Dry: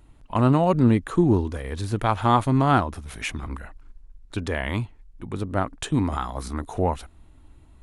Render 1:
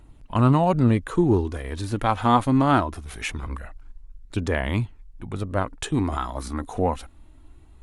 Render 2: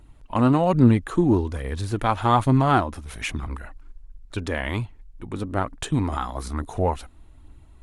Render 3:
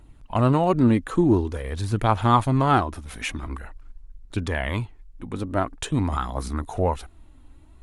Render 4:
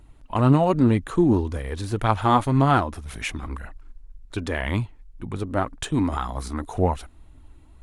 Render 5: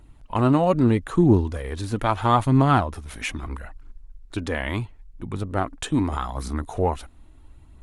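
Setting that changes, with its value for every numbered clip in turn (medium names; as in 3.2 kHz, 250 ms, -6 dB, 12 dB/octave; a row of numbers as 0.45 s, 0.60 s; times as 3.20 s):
phaser, rate: 0.22 Hz, 1.2 Hz, 0.47 Hz, 1.9 Hz, 0.77 Hz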